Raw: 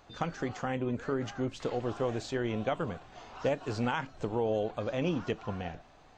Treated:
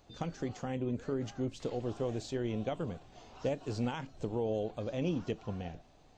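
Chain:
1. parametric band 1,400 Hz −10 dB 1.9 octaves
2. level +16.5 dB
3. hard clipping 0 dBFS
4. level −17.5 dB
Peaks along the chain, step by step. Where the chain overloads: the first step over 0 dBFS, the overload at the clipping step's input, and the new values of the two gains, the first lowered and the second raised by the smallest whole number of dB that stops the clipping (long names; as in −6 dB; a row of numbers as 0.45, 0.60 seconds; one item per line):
−21.5, −5.0, −5.0, −22.5 dBFS
no step passes full scale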